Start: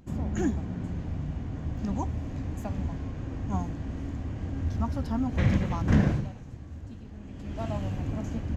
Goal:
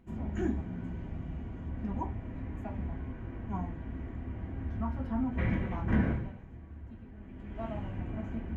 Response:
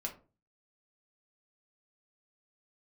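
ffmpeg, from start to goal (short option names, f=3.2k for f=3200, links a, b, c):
-filter_complex "[0:a]asetnsamples=n=441:p=0,asendcmd='1.69 highshelf g -13.5',highshelf=f=3.3k:t=q:w=1.5:g=-7.5[a];[1:a]atrim=start_sample=2205,asetrate=66150,aresample=44100[b];[a][b]afir=irnorm=-1:irlink=0,volume=-2dB"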